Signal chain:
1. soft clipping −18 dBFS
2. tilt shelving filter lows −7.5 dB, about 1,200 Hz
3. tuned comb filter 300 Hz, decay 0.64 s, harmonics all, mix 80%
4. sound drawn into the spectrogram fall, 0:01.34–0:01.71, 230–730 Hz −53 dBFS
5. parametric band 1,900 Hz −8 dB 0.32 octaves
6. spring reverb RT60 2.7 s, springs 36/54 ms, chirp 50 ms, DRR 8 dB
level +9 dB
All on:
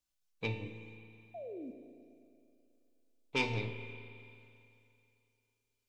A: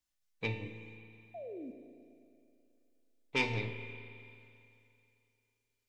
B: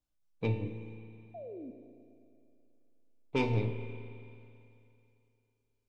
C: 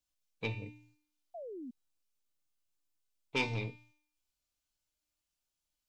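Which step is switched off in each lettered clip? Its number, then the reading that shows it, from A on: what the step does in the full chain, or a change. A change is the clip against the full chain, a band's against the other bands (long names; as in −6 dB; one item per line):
5, 2 kHz band +2.0 dB
2, 4 kHz band −10.5 dB
6, change in momentary loudness spread −4 LU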